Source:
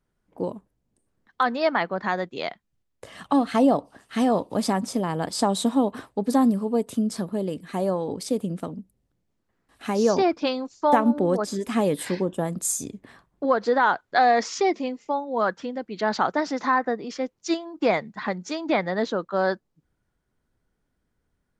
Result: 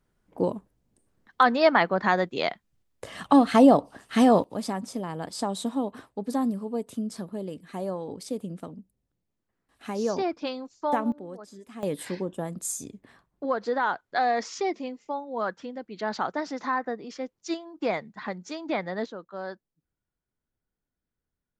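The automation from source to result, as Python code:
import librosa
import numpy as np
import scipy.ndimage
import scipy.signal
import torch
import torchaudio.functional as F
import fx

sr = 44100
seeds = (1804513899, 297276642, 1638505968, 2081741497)

y = fx.gain(x, sr, db=fx.steps((0.0, 3.0), (4.44, -7.0), (11.12, -18.0), (11.83, -6.0), (19.06, -13.0)))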